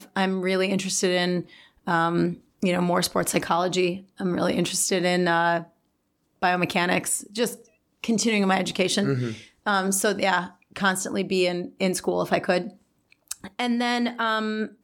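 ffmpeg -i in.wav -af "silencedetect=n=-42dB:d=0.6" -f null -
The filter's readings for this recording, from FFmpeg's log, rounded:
silence_start: 5.66
silence_end: 6.42 | silence_duration: 0.77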